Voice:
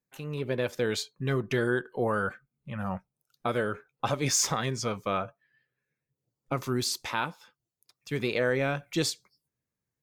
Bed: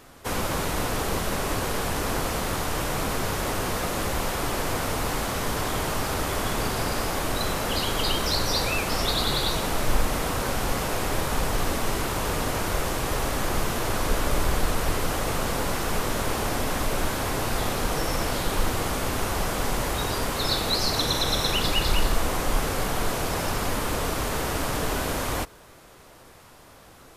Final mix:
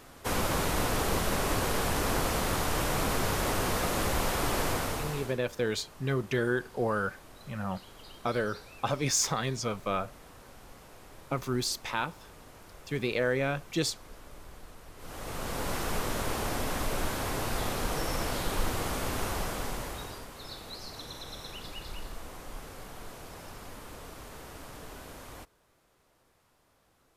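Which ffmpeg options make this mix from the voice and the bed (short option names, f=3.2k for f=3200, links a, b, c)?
-filter_complex "[0:a]adelay=4800,volume=-1.5dB[a];[1:a]volume=17.5dB,afade=t=out:st=4.64:d=0.75:silence=0.0707946,afade=t=in:st=14.96:d=0.79:silence=0.105925,afade=t=out:st=19.27:d=1:silence=0.223872[b];[a][b]amix=inputs=2:normalize=0"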